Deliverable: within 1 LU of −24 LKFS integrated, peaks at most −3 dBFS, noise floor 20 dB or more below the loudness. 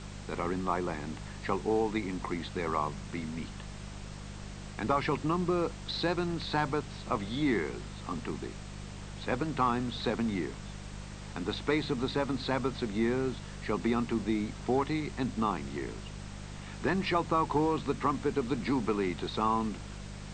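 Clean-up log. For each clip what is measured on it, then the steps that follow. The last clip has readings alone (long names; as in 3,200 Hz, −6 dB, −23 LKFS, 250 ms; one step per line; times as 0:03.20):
mains hum 50 Hz; hum harmonics up to 200 Hz; level of the hum −41 dBFS; background noise floor −44 dBFS; target noise floor −53 dBFS; integrated loudness −32.5 LKFS; sample peak −14.0 dBFS; target loudness −24.0 LKFS
→ hum removal 50 Hz, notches 4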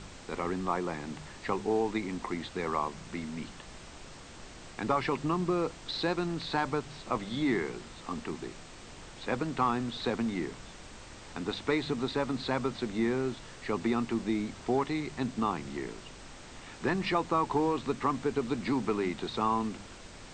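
mains hum none found; background noise floor −49 dBFS; target noise floor −53 dBFS
→ noise reduction from a noise print 6 dB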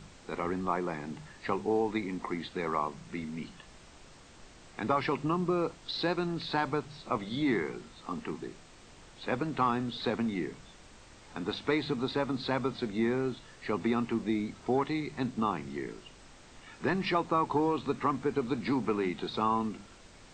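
background noise floor −55 dBFS; integrated loudness −32.5 LKFS; sample peak −14.0 dBFS; target loudness −24.0 LKFS
→ level +8.5 dB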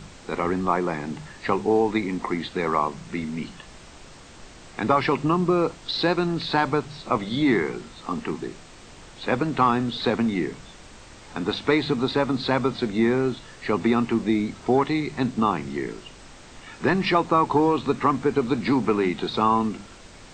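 integrated loudness −24.0 LKFS; sample peak −5.5 dBFS; background noise floor −46 dBFS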